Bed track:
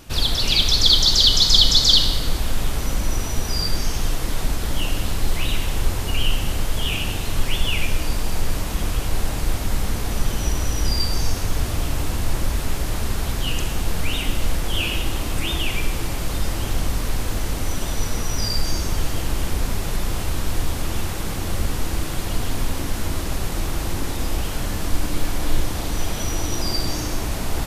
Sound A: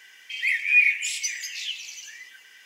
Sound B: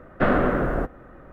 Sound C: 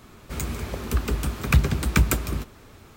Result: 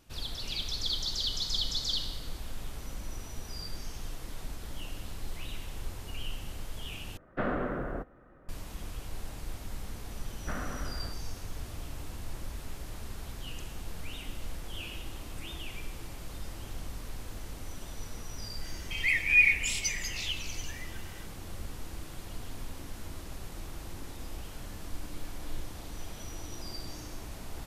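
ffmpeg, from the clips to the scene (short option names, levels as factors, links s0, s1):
-filter_complex "[2:a]asplit=2[s0][s1];[0:a]volume=0.133[s2];[s1]equalizer=f=420:t=o:w=1.7:g=-11.5[s3];[s2]asplit=2[s4][s5];[s4]atrim=end=7.174[s6];[s0]atrim=end=1.32,asetpts=PTS-STARTPTS,volume=0.266[s7];[s5]atrim=start=8.486[s8];[s3]atrim=end=1.32,asetpts=PTS-STARTPTS,volume=0.2,afade=t=in:d=0.004:c=hsin,afade=t=out:st=1.316:d=0.004:c=hsin,adelay=10270[s9];[1:a]atrim=end=2.65,asetpts=PTS-STARTPTS,volume=0.668,afade=t=in:d=0.004:c=hsin,afade=t=out:st=2.646:d=0.004:c=hsin,adelay=18610[s10];[s6][s7]acrossfade=d=0.004:c1=hsin:c2=hsin[s11];[s11][s8]acrossfade=d=0.004:c1=hsin:c2=hsin[s12];[s12][s9][s10]amix=inputs=3:normalize=0"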